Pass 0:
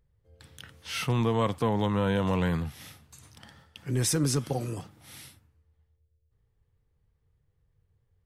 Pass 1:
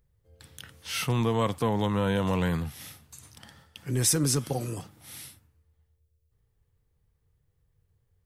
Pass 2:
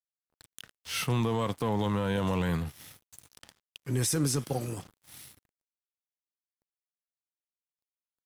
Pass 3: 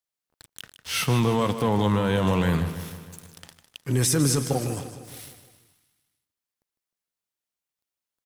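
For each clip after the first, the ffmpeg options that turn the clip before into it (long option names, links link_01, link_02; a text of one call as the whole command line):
ffmpeg -i in.wav -af "highshelf=frequency=6800:gain=8" out.wav
ffmpeg -i in.wav -af "areverse,acompressor=mode=upward:threshold=-41dB:ratio=2.5,areverse,aeval=exprs='sgn(val(0))*max(abs(val(0))-0.00531,0)':channel_layout=same,alimiter=limit=-19.5dB:level=0:latency=1:release=20" out.wav
ffmpeg -i in.wav -af "aecho=1:1:154|308|462|616|770|924:0.266|0.149|0.0834|0.0467|0.0262|0.0147,volume=6dB" out.wav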